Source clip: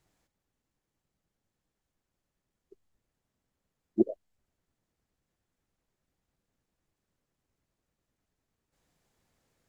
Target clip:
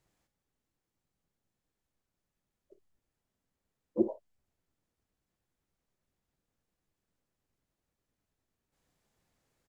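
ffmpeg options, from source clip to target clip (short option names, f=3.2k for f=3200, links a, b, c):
-filter_complex "[0:a]aecho=1:1:30|54:0.2|0.188,asplit=2[a][b];[b]asetrate=66075,aresample=44100,atempo=0.66742,volume=-10dB[c];[a][c]amix=inputs=2:normalize=0,volume=-3.5dB"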